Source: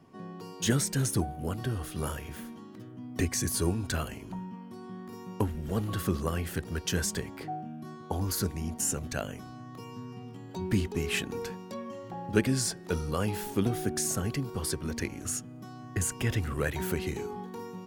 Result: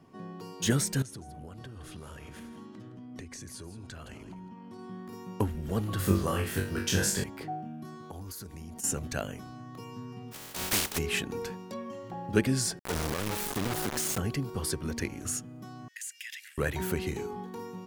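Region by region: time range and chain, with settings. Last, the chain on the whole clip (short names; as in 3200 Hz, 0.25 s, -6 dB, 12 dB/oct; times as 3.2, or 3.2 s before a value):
1.02–4.79 LPF 9000 Hz + compressor 8:1, threshold -41 dBFS + echo 0.165 s -12 dB
5.97–7.24 doubler 30 ms -6 dB + flutter echo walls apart 3.6 m, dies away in 0.37 s
7.85–8.84 high shelf 5600 Hz +5 dB + compressor 8:1, threshold -39 dBFS
10.31–10.97 spectral contrast lowered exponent 0.22 + hard clip -21 dBFS
12.79–14.18 compressor 3:1, threshold -40 dBFS + companded quantiser 2-bit
15.88–16.58 steep high-pass 1700 Hz 72 dB/oct + compressor 2.5:1, threshold -39 dBFS
whole clip: dry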